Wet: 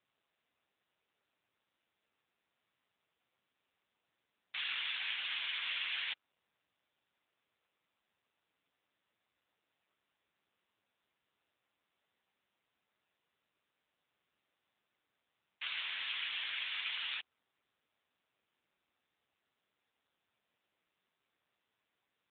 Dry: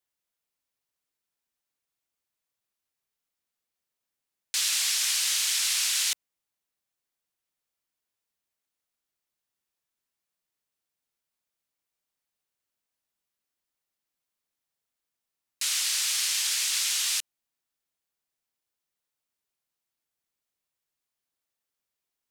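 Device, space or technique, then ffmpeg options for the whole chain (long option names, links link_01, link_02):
telephone: -af "highpass=320,lowpass=3400,equalizer=frequency=14000:width=2.5:gain=2.5" -ar 8000 -c:a libopencore_amrnb -b:a 6700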